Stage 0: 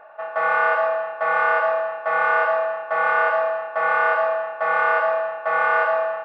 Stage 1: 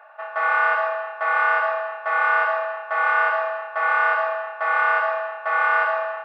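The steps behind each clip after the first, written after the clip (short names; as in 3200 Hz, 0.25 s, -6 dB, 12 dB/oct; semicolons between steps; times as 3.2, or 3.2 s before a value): HPF 880 Hz 12 dB/oct; gain +1.5 dB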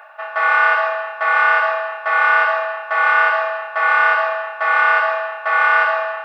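high shelf 2000 Hz +10.5 dB; reverse; upward compressor, threshold -32 dBFS; reverse; gain +2 dB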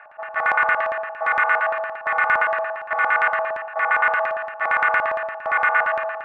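LFO low-pass square 8.7 Hz 790–2100 Hz; gain -7 dB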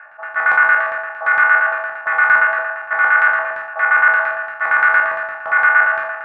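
spectral trails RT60 0.51 s; bell 1500 Hz +11 dB 0.63 oct; gain -4 dB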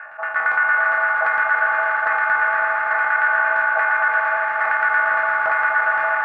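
compressor 4:1, threshold -23 dBFS, peak gain reduction 13 dB; on a send: swelling echo 81 ms, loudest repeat 5, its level -9 dB; on the sum: gain +4 dB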